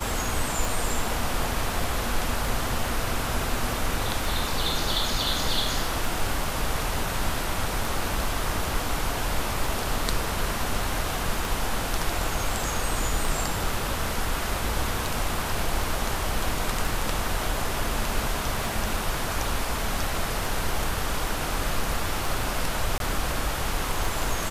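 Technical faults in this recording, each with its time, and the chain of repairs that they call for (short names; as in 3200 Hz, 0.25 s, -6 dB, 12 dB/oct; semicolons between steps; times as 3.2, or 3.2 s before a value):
tick 33 1/3 rpm
22.98–23 gap 22 ms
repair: de-click; interpolate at 22.98, 22 ms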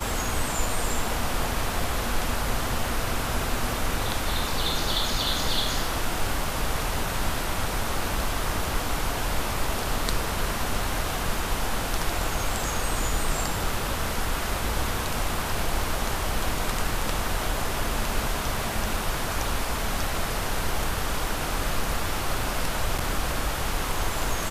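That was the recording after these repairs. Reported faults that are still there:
none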